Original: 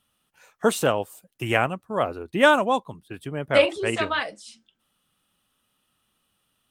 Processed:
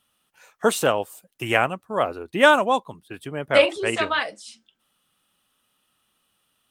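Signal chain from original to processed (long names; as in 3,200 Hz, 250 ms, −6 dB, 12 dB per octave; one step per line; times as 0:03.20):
low-shelf EQ 240 Hz −7 dB
level +2.5 dB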